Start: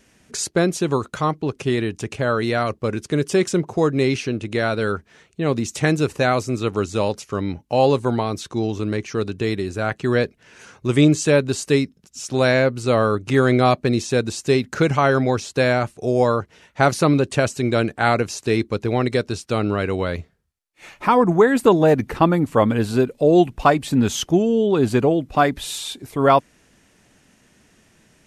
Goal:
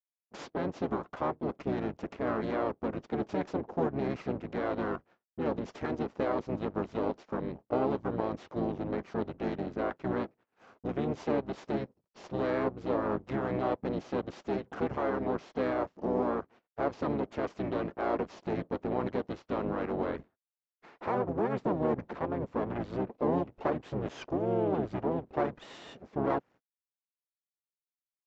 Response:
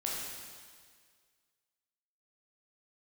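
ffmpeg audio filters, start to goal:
-filter_complex "[0:a]aresample=16000,aeval=exprs='max(val(0),0)':c=same,aresample=44100,alimiter=limit=-13dB:level=0:latency=1:release=196,agate=range=-54dB:threshold=-47dB:ratio=16:detection=peak,bandpass=f=700:t=q:w=0.94:csg=0,asplit=3[a][b][c];[b]asetrate=22050,aresample=44100,atempo=2,volume=-1dB[d];[c]asetrate=35002,aresample=44100,atempo=1.25992,volume=-1dB[e];[a][d][e]amix=inputs=3:normalize=0,volume=-5dB"

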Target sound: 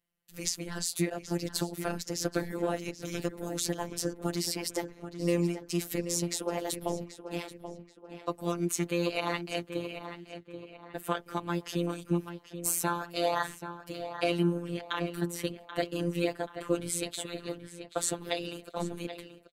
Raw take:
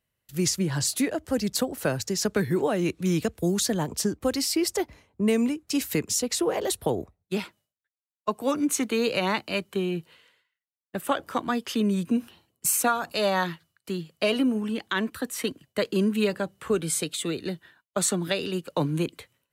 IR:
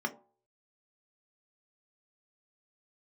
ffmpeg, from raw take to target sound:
-filter_complex "[0:a]aeval=exprs='val(0)*sin(2*PI*80*n/s)':c=same,asplit=2[a][b];[b]adelay=782,lowpass=f=3.1k:p=1,volume=-10dB,asplit=2[c][d];[d]adelay=782,lowpass=f=3.1k:p=1,volume=0.42,asplit=2[e][f];[f]adelay=782,lowpass=f=3.1k:p=1,volume=0.42,asplit=2[g][h];[h]adelay=782,lowpass=f=3.1k:p=1,volume=0.42[i];[a][c][e][g][i]amix=inputs=5:normalize=0,afftfilt=real='hypot(re,im)*cos(PI*b)':imag='0':win_size=1024:overlap=0.75"

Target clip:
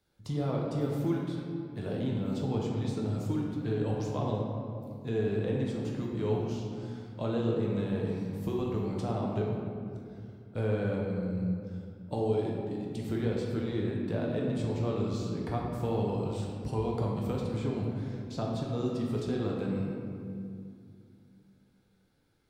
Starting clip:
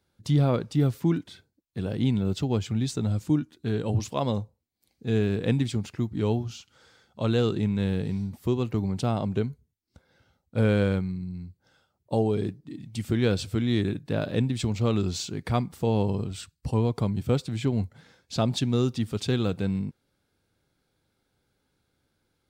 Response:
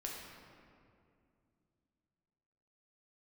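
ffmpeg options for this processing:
-filter_complex "[0:a]acrossover=split=420|1200[a][b][c];[a]acompressor=threshold=-33dB:ratio=4[d];[b]acompressor=threshold=-33dB:ratio=4[e];[c]acompressor=threshold=-50dB:ratio=4[f];[d][e][f]amix=inputs=3:normalize=0[g];[1:a]atrim=start_sample=2205[h];[g][h]afir=irnorm=-1:irlink=0,volume=1.5dB"

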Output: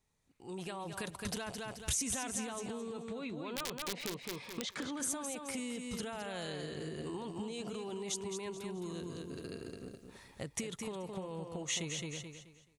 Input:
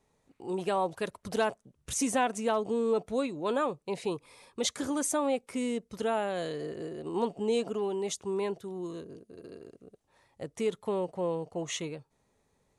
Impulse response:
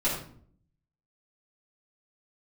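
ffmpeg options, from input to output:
-filter_complex "[0:a]alimiter=level_in=4.5dB:limit=-24dB:level=0:latency=1:release=13,volume=-4.5dB,asettb=1/sr,asplit=3[a][b][c];[a]atrim=end=2.974[d];[b]atrim=start=2.97:end=5,asetpts=PTS-STARTPTS,afade=t=in:d=0.004:c=qsin,afade=t=out:st=2.026:d=0.004:c=qsin,highpass=140,lowpass=3.6k[e];[c]atrim=start=4.996[f];[d][e]acrossfade=d=0.004:c1=hsin:c2=qsin[g];[g][f]acrossfade=d=0.004:c1=qsin:c2=hsin,aeval=exprs='(mod(23.7*val(0)+1,2)-1)/23.7':c=same,dynaudnorm=f=130:g=13:m=16dB,aecho=1:1:215|430|645|860:0.473|0.132|0.0371|0.0104,acompressor=threshold=-27dB:ratio=6,equalizer=f=500:w=0.46:g=-11,volume=-3.5dB"

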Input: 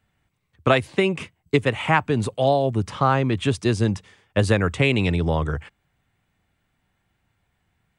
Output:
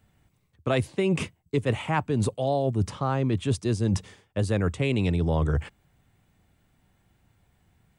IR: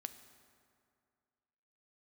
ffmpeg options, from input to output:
-af "equalizer=f=1.9k:w=0.5:g=-7,areverse,acompressor=threshold=-28dB:ratio=10,areverse,volume=7dB"

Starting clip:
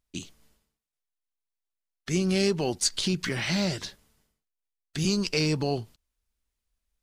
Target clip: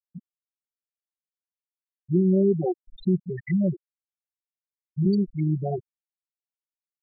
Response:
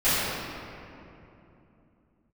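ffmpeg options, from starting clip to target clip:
-af "aecho=1:1:5.5:0.97,afftfilt=real='re*gte(hypot(re,im),0.251)':imag='im*gte(hypot(re,im),0.251)':win_size=1024:overlap=0.75,afftfilt=real='re*lt(b*sr/1024,680*pow(7500/680,0.5+0.5*sin(2*PI*2.4*pts/sr)))':imag='im*lt(b*sr/1024,680*pow(7500/680,0.5+0.5*sin(2*PI*2.4*pts/sr)))':win_size=1024:overlap=0.75"

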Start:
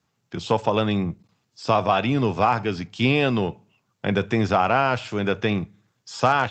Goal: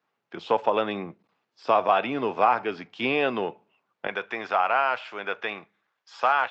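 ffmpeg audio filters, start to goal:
-af "asetnsamples=n=441:p=0,asendcmd='4.07 highpass f 780',highpass=400,lowpass=2.6k"

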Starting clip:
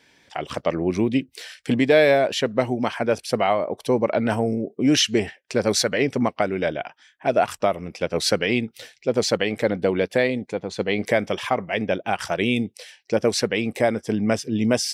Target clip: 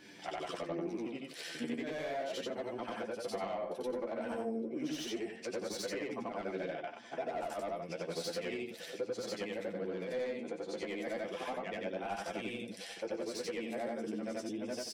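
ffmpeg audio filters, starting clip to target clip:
-filter_complex "[0:a]afftfilt=real='re':imag='-im':win_size=8192:overlap=0.75,highpass=240,highshelf=f=2.6k:g=2,aecho=1:1:5.9:0.31,acrossover=split=330[a][b];[a]acompressor=mode=upward:threshold=-52dB:ratio=2.5[c];[b]asoftclip=type=tanh:threshold=-23.5dB[d];[c][d]amix=inputs=2:normalize=0,acompressor=threshold=-41dB:ratio=6,flanger=delay=9.5:depth=3.9:regen=28:speed=0.32:shape=triangular,asplit=2[e][f];[f]adelay=787,lowpass=f=2.5k:p=1,volume=-19dB,asplit=2[g][h];[h]adelay=787,lowpass=f=2.5k:p=1,volume=0.32,asplit=2[i][j];[j]adelay=787,lowpass=f=2.5k:p=1,volume=0.32[k];[e][g][i][k]amix=inputs=4:normalize=0,adynamicequalizer=threshold=0.001:dfrequency=1600:dqfactor=0.7:tfrequency=1600:tqfactor=0.7:attack=5:release=100:ratio=0.375:range=2:mode=cutabove:tftype=highshelf,volume=7.5dB"

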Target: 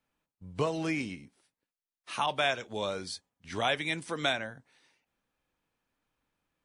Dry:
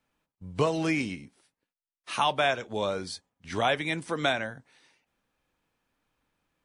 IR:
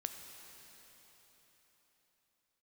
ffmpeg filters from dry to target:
-filter_complex "[0:a]asettb=1/sr,asplit=3[a][b][c];[a]atrim=end=2.264[d];[b]atrim=start=2.26:end=4.37,asetpts=PTS-STARTPTS,afade=t=in:d=0.004:c=qsin,afade=t=out:st=2.106:d=0.004:c=qsin,adynamicequalizer=threshold=0.0141:dfrequency=1900:dqfactor=0.7:tfrequency=1900:tqfactor=0.7:attack=5:release=100:ratio=0.375:range=2.5:mode=boostabove:tftype=highshelf[e];[c]atrim=start=4.366[f];[d][e]acrossfade=d=0.004:c1=hsin:c2=qsin[g];[g][f]acrossfade=d=0.004:c1=qsin:c2=hsin,volume=-4.5dB"

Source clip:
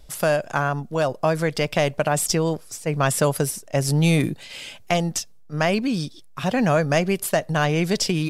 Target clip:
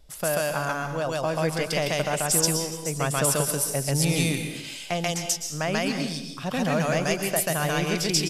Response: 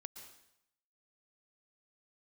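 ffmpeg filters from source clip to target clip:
-filter_complex "[0:a]asplit=2[a][b];[b]highshelf=f=2.8k:g=12[c];[1:a]atrim=start_sample=2205,adelay=137[d];[c][d]afir=irnorm=-1:irlink=0,volume=4dB[e];[a][e]amix=inputs=2:normalize=0,aresample=32000,aresample=44100,volume=-7dB"

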